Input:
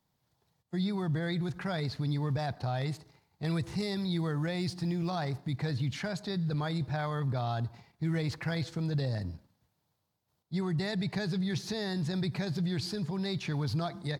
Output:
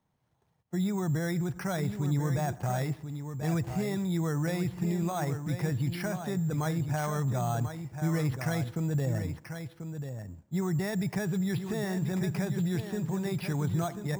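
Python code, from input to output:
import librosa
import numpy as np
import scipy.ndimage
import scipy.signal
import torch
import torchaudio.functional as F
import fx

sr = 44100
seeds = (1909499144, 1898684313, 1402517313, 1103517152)

p1 = fx.high_shelf(x, sr, hz=5300.0, db=-7.5)
p2 = p1 + fx.echo_single(p1, sr, ms=1039, db=-8.5, dry=0)
p3 = np.repeat(scipy.signal.resample_poly(p2, 1, 6), 6)[:len(p2)]
y = p3 * 10.0 ** (2.0 / 20.0)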